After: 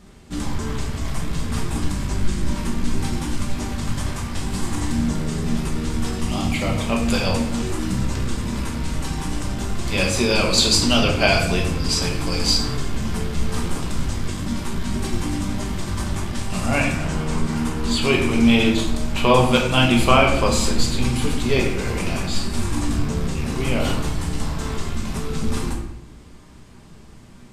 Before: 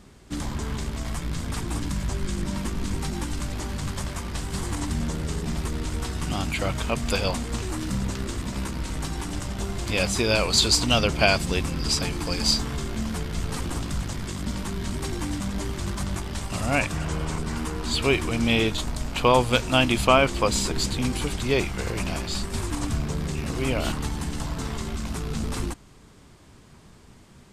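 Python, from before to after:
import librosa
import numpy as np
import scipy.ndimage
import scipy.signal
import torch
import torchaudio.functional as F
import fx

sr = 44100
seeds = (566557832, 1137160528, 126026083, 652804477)

y = fx.notch(x, sr, hz=1500.0, q=5.3, at=(6.17, 6.88))
y = fx.room_shoebox(y, sr, seeds[0], volume_m3=210.0, walls='mixed', distance_m=1.2)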